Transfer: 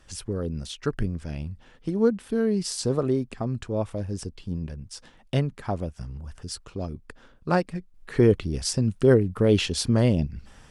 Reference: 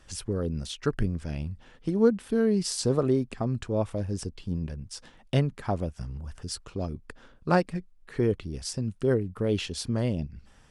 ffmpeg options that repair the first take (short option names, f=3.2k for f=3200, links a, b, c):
-af "asetnsamples=n=441:p=0,asendcmd='7.94 volume volume -7dB',volume=0dB"